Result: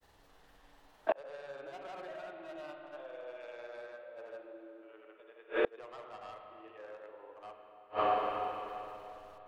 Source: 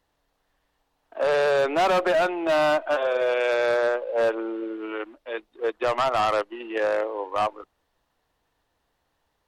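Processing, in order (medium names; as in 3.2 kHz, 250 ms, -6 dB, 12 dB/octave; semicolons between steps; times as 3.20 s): granulator, pitch spread up and down by 0 st; spring tank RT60 3 s, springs 30/42/49 ms, chirp 40 ms, DRR 2.5 dB; inverted gate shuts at -26 dBFS, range -35 dB; trim +9.5 dB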